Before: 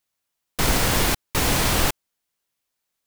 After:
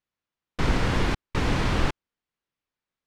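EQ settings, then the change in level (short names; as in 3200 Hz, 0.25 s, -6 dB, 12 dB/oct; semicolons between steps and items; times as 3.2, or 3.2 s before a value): tape spacing loss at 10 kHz 25 dB; bell 670 Hz -4.5 dB 0.87 oct; 0.0 dB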